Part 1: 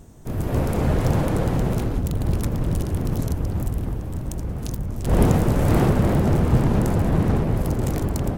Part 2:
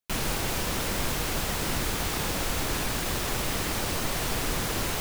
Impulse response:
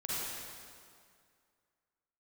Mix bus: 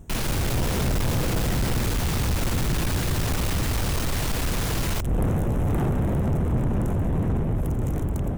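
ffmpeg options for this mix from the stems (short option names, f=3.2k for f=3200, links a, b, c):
-filter_complex "[0:a]equalizer=f=4.6k:w=3.7:g=-15,volume=-4dB[a];[1:a]volume=2.5dB[b];[a][b]amix=inputs=2:normalize=0,lowshelf=f=190:g=6.5,asoftclip=type=tanh:threshold=-19dB"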